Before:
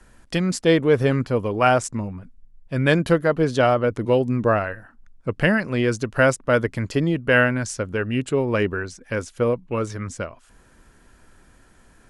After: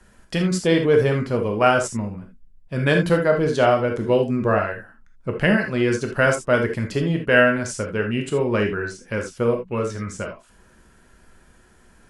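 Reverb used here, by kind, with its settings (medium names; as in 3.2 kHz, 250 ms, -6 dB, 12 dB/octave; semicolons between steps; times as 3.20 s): gated-style reverb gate 100 ms flat, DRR 2.5 dB; trim -1.5 dB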